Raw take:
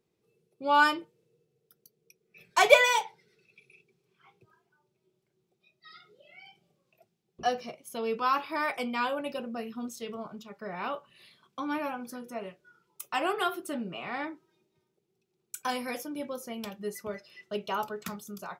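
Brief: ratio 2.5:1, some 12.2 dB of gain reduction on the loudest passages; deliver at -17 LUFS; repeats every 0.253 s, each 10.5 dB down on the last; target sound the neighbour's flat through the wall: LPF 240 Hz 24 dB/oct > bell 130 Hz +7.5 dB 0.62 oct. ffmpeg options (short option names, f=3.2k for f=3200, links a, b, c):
-af "acompressor=threshold=-31dB:ratio=2.5,lowpass=f=240:w=0.5412,lowpass=f=240:w=1.3066,equalizer=f=130:t=o:w=0.62:g=7.5,aecho=1:1:253|506|759:0.299|0.0896|0.0269,volume=29.5dB"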